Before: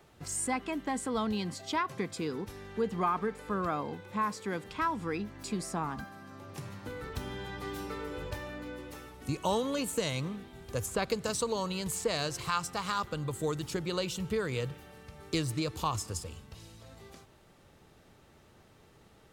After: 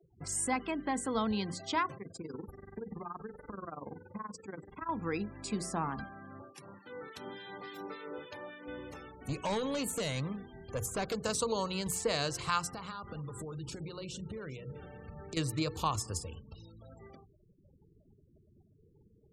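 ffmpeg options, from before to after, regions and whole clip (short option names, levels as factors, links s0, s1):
-filter_complex "[0:a]asettb=1/sr,asplit=3[s0][s1][s2];[s0]atrim=end=1.974[s3];[s1]atrim=start=1.97:end=4.89,asetpts=PTS-STARTPTS,afade=t=in:d=0.004:c=qsin,afade=t=out:st=2.916:d=0.004:c=qsin,equalizer=f=3100:t=o:w=0.92:g=-8,acompressor=threshold=0.0224:ratio=16:attack=3.2:release=140:knee=1:detection=peak,tremolo=f=21:d=0.919[s4];[s2]atrim=start=4.886[s5];[s3][s4]acrossfade=d=0.004:c1=hsin:c2=qsin[s6];[s6][s5]acrossfade=d=0.004:c1=qsin:c2=hsin,asettb=1/sr,asplit=3[s7][s8][s9];[s7]atrim=end=6.424[s10];[s8]atrim=start=6.42:end=8.68,asetpts=PTS-STARTPTS,afade=t=in:d=0.004:c=qsin,afade=t=out:st=2.256:d=0.004:c=qsin,highpass=230,acrossover=split=1500[s11][s12];[s11]aeval=exprs='val(0)*(1-0.7/2+0.7/2*cos(2*PI*3.5*n/s))':c=same[s13];[s12]aeval=exprs='val(0)*(1-0.7/2-0.7/2*cos(2*PI*3.5*n/s))':c=same[s14];[s13][s14]amix=inputs=2:normalize=0[s15];[s9]atrim=start=8.676[s16];[s10][s15]acrossfade=d=0.004:c1=hsin:c2=qsin[s17];[s17][s16]acrossfade=d=0.004:c1=qsin:c2=hsin,asettb=1/sr,asplit=3[s18][s19][s20];[s18]atrim=end=9.264[s21];[s19]atrim=start=9.26:end=11.18,asetpts=PTS-STARTPTS,afade=t=in:d=0.004:c=qsin,afade=t=out:st=1.916:d=0.004:c=qsin,adynamicequalizer=threshold=0.00224:dfrequency=330:dqfactor=6.2:tfrequency=330:tqfactor=6.2:attack=5:release=100:ratio=0.375:range=2:mode=cutabove:tftype=bell,acrusher=bits=7:mode=log:mix=0:aa=0.000001,asoftclip=type=hard:threshold=0.0335[s22];[s20]atrim=start=11.176[s23];[s21][s22]acrossfade=d=0.004:c1=hsin:c2=qsin[s24];[s24][s23]acrossfade=d=0.004:c1=qsin:c2=hsin,asettb=1/sr,asplit=3[s25][s26][s27];[s25]atrim=end=12.724[s28];[s26]atrim=start=12.72:end=15.37,asetpts=PTS-STARTPTS,afade=t=in:d=0.004:c=qsin,afade=t=out:st=2.646:d=0.004:c=qsin,lowshelf=f=410:g=5,acompressor=threshold=0.0126:ratio=12:attack=3.2:release=140:knee=1:detection=peak,aecho=1:1:46|397:0.2|0.237,atrim=end_sample=116865[s29];[s27]atrim=start=15.366[s30];[s28][s29]acrossfade=d=0.004:c1=hsin:c2=qsin[s31];[s31][s30]acrossfade=d=0.004:c1=qsin:c2=hsin,afftfilt=real='re*gte(hypot(re,im),0.00398)':imag='im*gte(hypot(re,im),0.00398)':win_size=1024:overlap=0.75,bandreject=f=60:t=h:w=6,bandreject=f=120:t=h:w=6,bandreject=f=180:t=h:w=6,bandreject=f=240:t=h:w=6,bandreject=f=300:t=h:w=6,bandreject=f=360:t=h:w=6,bandreject=f=420:t=h:w=6,bandreject=f=480:t=h:w=6"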